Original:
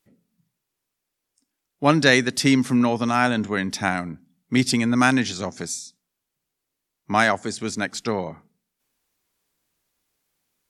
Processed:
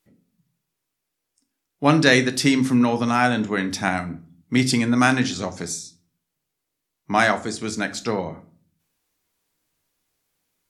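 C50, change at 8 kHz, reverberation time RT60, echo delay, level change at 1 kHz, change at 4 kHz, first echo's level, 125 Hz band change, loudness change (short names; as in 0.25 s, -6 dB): 16.0 dB, +0.5 dB, 0.45 s, none, +0.5 dB, +0.5 dB, none, +1.5 dB, +0.5 dB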